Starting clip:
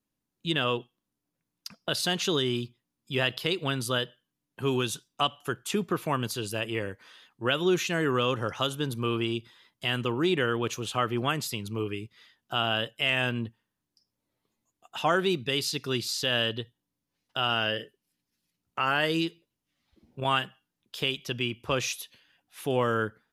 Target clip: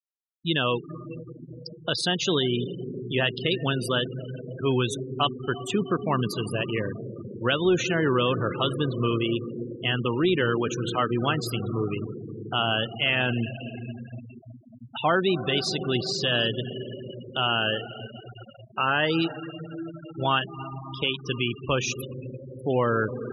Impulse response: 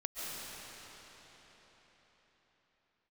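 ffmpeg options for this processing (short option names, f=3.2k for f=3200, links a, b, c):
-filter_complex "[0:a]asplit=2[a][b];[1:a]atrim=start_sample=2205,asetrate=28224,aresample=44100,lowshelf=f=300:g=8[c];[b][c]afir=irnorm=-1:irlink=0,volume=-15dB[d];[a][d]amix=inputs=2:normalize=0,aeval=exprs='0.355*(cos(1*acos(clip(val(0)/0.355,-1,1)))-cos(1*PI/2))+0.0178*(cos(5*acos(clip(val(0)/0.355,-1,1)))-cos(5*PI/2))+0.00398*(cos(6*acos(clip(val(0)/0.355,-1,1)))-cos(6*PI/2))':c=same,afftfilt=real='re*gte(hypot(re,im),0.0447)':imag='im*gte(hypot(re,im),0.0447)':win_size=1024:overlap=0.75"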